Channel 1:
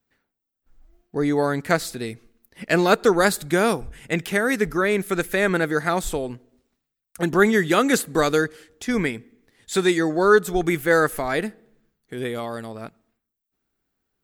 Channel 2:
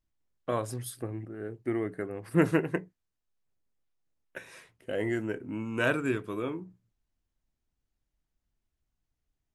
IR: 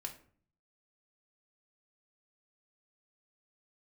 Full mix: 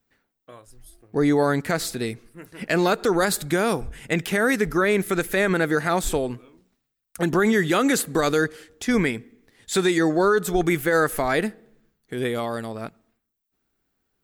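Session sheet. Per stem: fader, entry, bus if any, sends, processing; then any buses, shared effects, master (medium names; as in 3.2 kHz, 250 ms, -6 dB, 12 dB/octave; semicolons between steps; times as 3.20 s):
+2.5 dB, 0.00 s, no send, none
-10.0 dB, 0.00 s, no send, treble shelf 2.2 kHz +11 dB; auto duck -10 dB, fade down 0.40 s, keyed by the first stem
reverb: none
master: peak limiter -11 dBFS, peak gain reduction 10 dB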